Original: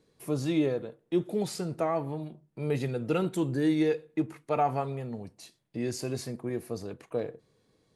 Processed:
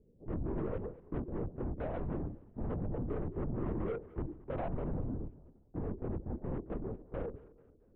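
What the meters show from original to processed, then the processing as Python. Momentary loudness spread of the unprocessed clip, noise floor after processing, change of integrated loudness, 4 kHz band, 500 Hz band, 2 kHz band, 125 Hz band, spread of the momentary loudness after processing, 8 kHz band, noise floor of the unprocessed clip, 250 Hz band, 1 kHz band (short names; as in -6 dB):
12 LU, -64 dBFS, -8.5 dB, under -25 dB, -9.5 dB, -13.0 dB, -4.0 dB, 6 LU, under -35 dB, -71 dBFS, -9.5 dB, -13.0 dB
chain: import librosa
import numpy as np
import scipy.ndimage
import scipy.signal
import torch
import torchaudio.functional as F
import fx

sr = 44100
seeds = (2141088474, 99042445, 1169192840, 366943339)

p1 = fx.rattle_buzz(x, sr, strikes_db=-38.0, level_db=-20.0)
p2 = scipy.signal.sosfilt(scipy.signal.cheby2(4, 70, 2400.0, 'lowpass', fs=sr, output='sos'), p1)
p3 = fx.low_shelf(p2, sr, hz=170.0, db=7.0)
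p4 = fx.over_compress(p3, sr, threshold_db=-31.0, ratio=-0.5)
p5 = p3 + (p4 * 10.0 ** (-2.0 / 20.0))
p6 = 10.0 ** (-27.0 / 20.0) * np.tanh(p5 / 10.0 ** (-27.0 / 20.0))
p7 = p6 + fx.echo_feedback(p6, sr, ms=222, feedback_pct=39, wet_db=-19.5, dry=0)
p8 = fx.lpc_vocoder(p7, sr, seeds[0], excitation='whisper', order=8)
y = p8 * 10.0 ** (-6.0 / 20.0)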